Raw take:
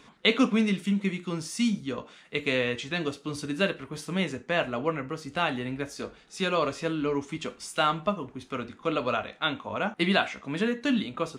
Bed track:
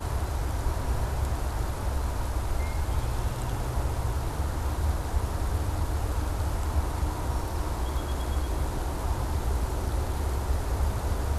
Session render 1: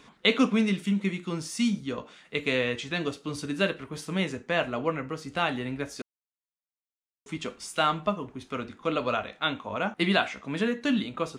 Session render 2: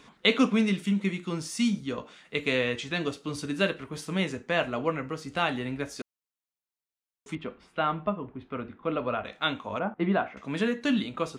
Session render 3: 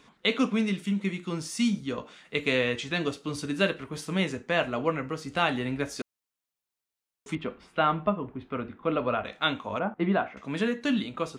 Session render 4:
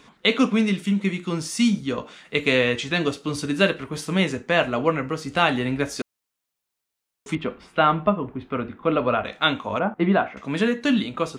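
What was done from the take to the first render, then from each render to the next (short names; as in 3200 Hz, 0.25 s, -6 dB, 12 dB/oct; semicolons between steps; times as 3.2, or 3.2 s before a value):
6.02–7.26 mute
7.35–9.25 air absorption 480 m; 9.79–10.37 LPF 1200 Hz
vocal rider within 4 dB 2 s
gain +6 dB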